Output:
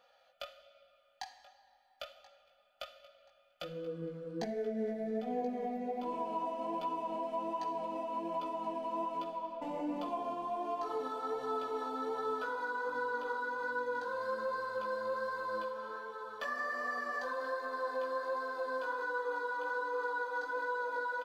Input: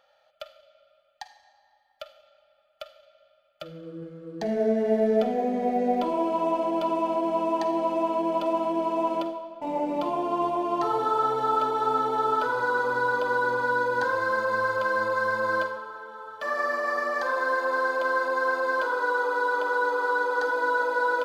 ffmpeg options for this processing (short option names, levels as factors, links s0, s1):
-filter_complex "[0:a]aecho=1:1:4.1:0.7,acompressor=threshold=0.0251:ratio=6,flanger=delay=16:depth=3.7:speed=1.3,asplit=2[s0][s1];[s1]aecho=0:1:1030|2060|3090:0.112|0.0337|0.0101[s2];[s0][s2]amix=inputs=2:normalize=0"